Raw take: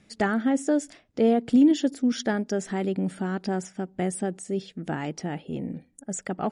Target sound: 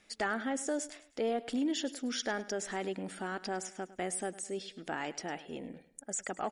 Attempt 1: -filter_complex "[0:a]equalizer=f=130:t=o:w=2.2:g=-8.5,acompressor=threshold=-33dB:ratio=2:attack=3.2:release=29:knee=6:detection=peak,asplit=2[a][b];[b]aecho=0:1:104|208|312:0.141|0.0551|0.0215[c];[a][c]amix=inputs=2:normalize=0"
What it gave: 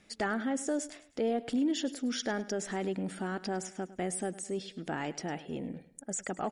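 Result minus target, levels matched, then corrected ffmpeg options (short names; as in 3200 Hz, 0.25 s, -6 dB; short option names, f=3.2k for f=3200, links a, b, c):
125 Hz band +5.5 dB
-filter_complex "[0:a]equalizer=f=130:t=o:w=2.2:g=-20,acompressor=threshold=-33dB:ratio=2:attack=3.2:release=29:knee=6:detection=peak,asplit=2[a][b];[b]aecho=0:1:104|208|312:0.141|0.0551|0.0215[c];[a][c]amix=inputs=2:normalize=0"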